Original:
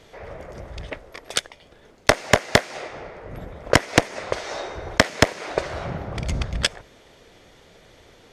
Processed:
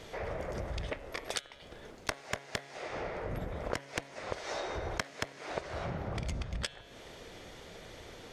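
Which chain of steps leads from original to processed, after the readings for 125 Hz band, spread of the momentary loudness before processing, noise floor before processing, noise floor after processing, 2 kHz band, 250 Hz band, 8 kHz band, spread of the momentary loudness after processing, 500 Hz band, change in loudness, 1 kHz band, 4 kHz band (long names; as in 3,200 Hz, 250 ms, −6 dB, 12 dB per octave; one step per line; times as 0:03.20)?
−11.5 dB, 20 LU, −52 dBFS, −52 dBFS, −16.0 dB, −15.0 dB, −15.0 dB, 12 LU, −14.0 dB, −16.5 dB, −13.5 dB, −15.5 dB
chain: hum removal 138.8 Hz, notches 31
downward compressor 12 to 1, threshold −35 dBFS, peak gain reduction 26 dB
level +2 dB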